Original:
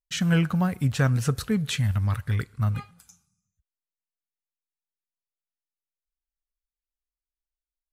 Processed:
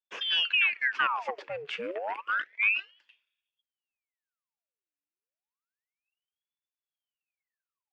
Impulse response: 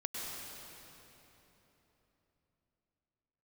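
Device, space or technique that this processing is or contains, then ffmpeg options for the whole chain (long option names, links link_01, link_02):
voice changer toy: -filter_complex "[0:a]asettb=1/sr,asplit=3[link_01][link_02][link_03];[link_01]atrim=end=1.704[link_04];[link_02]atrim=start=1.7:end=2.38,asetpts=PTS-STARTPTS,afade=type=in:duration=0.004:curve=qsin,afade=type=out:start_time=0.676:duration=0.004:curve=qsin,equalizer=frequency=9300:width=3.5:gain=12[link_05];[link_03]atrim=start=2.376[link_06];[link_04][link_05]acrossfade=duration=0.004:curve1=hsin:curve2=qsin[link_07];[link_07][link_06]acrossfade=duration=0.004:curve1=qsin:curve2=hsin,aeval=exprs='val(0)*sin(2*PI*1900*n/s+1900*0.85/0.3*sin(2*PI*0.3*n/s))':channel_layout=same,highpass=460,equalizer=frequency=750:width_type=q:width=4:gain=-4,equalizer=frequency=1500:width_type=q:width=4:gain=4,equalizer=frequency=2600:width_type=q:width=4:gain=9,equalizer=frequency=3900:width_type=q:width=4:gain=-10,lowpass=frequency=4100:width=0.5412,lowpass=frequency=4100:width=1.3066,volume=-4.5dB"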